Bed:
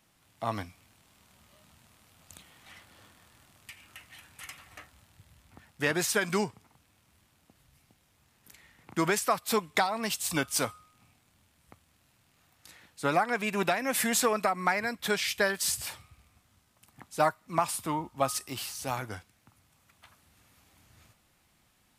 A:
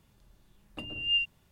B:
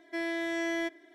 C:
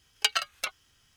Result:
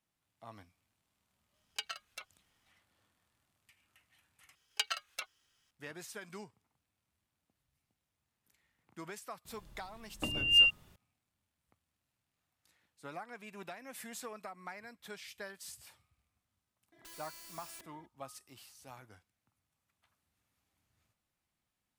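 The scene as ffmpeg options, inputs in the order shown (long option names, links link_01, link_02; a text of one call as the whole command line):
ffmpeg -i bed.wav -i cue0.wav -i cue1.wav -i cue2.wav -filter_complex "[3:a]asplit=2[link_01][link_02];[0:a]volume=-19dB[link_03];[link_02]lowshelf=frequency=200:gain=-10.5[link_04];[1:a]acontrast=65[link_05];[2:a]aeval=exprs='(mod(106*val(0)+1,2)-1)/106':channel_layout=same[link_06];[link_03]asplit=2[link_07][link_08];[link_07]atrim=end=4.554[link_09];[link_04]atrim=end=1.16,asetpts=PTS-STARTPTS,volume=-9dB[link_10];[link_08]atrim=start=5.706[link_11];[link_01]atrim=end=1.16,asetpts=PTS-STARTPTS,volume=-15dB,afade=type=in:duration=0.004:curve=hsin,afade=type=out:start_time=1.156:duration=0.004:curve=hsin,adelay=1540[link_12];[link_05]atrim=end=1.51,asetpts=PTS-STARTPTS,volume=-2.5dB,afade=type=in:duration=0.004:curve=hsin,afade=type=out:start_time=1.506:duration=0.004:curve=hsin,adelay=9450[link_13];[link_06]atrim=end=1.14,asetpts=PTS-STARTPTS,volume=-7dB,afade=type=in:duration=0.004:curve=hsin,afade=type=out:start_time=1.136:duration=0.004:curve=hsin,adelay=16920[link_14];[link_09][link_10]acrossfade=duration=0.004:curve1=hsin:curve2=hsin[link_15];[link_15][link_11]acrossfade=duration=0.004:curve1=hsin:curve2=hsin[link_16];[link_16][link_12][link_13][link_14]amix=inputs=4:normalize=0" out.wav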